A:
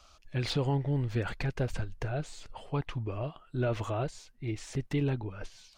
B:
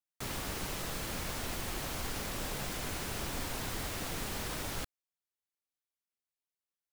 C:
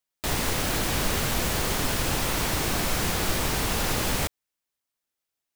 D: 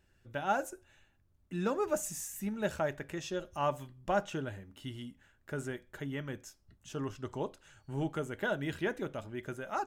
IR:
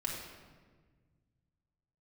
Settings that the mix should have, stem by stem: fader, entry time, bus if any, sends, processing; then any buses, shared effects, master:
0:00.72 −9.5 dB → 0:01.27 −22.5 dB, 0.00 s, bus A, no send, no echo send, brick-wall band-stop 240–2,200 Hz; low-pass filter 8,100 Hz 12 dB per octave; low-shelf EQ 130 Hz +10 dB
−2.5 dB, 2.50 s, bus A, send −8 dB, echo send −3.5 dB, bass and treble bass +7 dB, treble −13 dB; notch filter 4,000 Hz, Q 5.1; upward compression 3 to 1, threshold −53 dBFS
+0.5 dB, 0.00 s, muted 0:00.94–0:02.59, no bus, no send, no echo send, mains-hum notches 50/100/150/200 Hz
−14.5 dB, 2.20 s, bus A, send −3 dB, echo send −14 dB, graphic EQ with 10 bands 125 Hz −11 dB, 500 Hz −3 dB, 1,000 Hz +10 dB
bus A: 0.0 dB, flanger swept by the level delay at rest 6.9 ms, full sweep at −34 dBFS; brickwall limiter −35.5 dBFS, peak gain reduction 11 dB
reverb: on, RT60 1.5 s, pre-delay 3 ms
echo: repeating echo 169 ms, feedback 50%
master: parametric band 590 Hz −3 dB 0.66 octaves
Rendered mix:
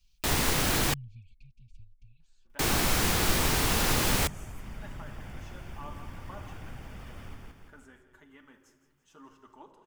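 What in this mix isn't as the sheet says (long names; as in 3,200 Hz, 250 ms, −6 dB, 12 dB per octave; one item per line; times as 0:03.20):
stem B −2.5 dB → −9.5 dB
reverb return −6.5 dB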